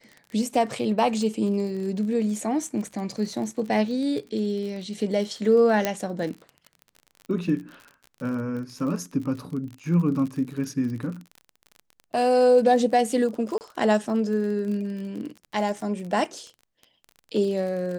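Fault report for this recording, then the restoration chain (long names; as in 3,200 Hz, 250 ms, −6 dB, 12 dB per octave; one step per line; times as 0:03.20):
surface crackle 38 per second −33 dBFS
0:05.85: click −8 dBFS
0:13.58–0:13.61: drop-out 29 ms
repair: click removal
repair the gap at 0:13.58, 29 ms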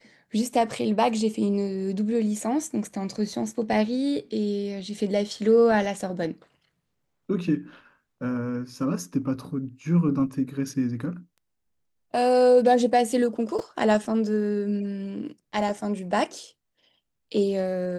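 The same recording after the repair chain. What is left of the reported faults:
0:05.85: click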